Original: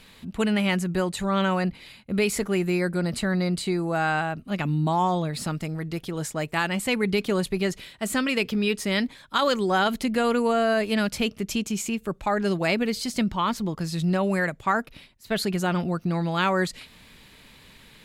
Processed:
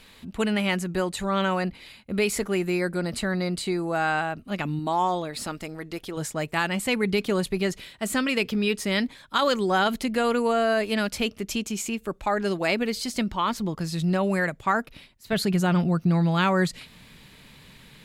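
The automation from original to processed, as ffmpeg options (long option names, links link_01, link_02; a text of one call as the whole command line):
ffmpeg -i in.wav -af "asetnsamples=nb_out_samples=441:pad=0,asendcmd='4.79 equalizer g -12;6.17 equalizer g -1;9.96 equalizer g -7;13.57 equalizer g -0.5;15.33 equalizer g 6.5',equalizer=frequency=150:width_type=o:width=0.8:gain=-5" out.wav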